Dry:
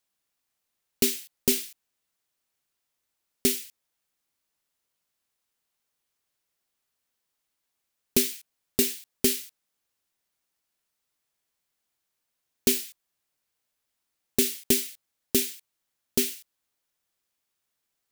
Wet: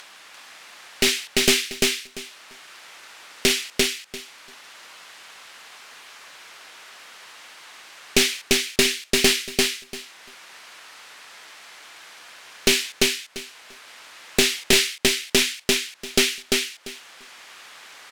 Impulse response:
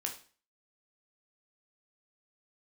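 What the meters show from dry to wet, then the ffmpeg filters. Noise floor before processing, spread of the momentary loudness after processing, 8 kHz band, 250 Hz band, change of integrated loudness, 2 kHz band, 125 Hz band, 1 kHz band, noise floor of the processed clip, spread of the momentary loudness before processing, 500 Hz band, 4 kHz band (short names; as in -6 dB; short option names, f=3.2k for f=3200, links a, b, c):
-81 dBFS, 19 LU, +6.5 dB, +4.0 dB, +5.5 dB, +17.5 dB, +7.0 dB, +18.0 dB, -50 dBFS, 14 LU, +7.5 dB, +13.5 dB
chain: -filter_complex "[0:a]lowpass=1.7k,aderivative,asplit=2[a][b];[b]acompressor=mode=upward:threshold=-53dB:ratio=2.5,volume=2.5dB[c];[a][c]amix=inputs=2:normalize=0,aeval=exprs='clip(val(0),-1,0.00668)':c=same,aecho=1:1:344|688|1032:0.708|0.12|0.0205,alimiter=level_in=28dB:limit=-1dB:release=50:level=0:latency=1,volume=-1dB"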